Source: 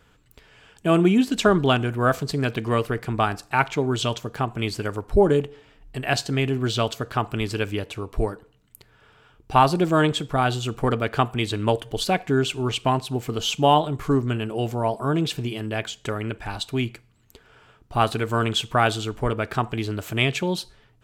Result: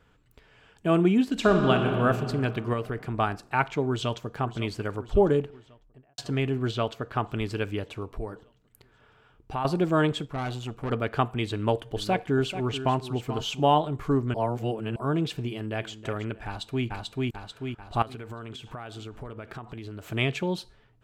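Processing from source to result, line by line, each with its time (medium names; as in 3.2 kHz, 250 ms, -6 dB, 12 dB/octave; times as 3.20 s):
1.32–1.99 s: reverb throw, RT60 2.8 s, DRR 3 dB
2.73–3.19 s: compression 2:1, threshold -24 dBFS
3.88–4.40 s: echo throw 550 ms, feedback 70%, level -14 dB
5.30–6.18 s: studio fade out
6.71–7.16 s: tone controls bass -2 dB, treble -6 dB
8.06–9.65 s: compression 2:1, threshold -30 dBFS
10.25–10.91 s: valve stage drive 23 dB, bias 0.7
11.52–13.60 s: delay 437 ms -11.5 dB
14.34–14.96 s: reverse
15.47–15.92 s: echo throw 320 ms, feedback 35%, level -13 dB
16.46–16.86 s: echo throw 440 ms, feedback 55%, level -0.5 dB
18.02–20.05 s: compression 10:1, threshold -31 dBFS
whole clip: treble shelf 3.8 kHz -8.5 dB; trim -3.5 dB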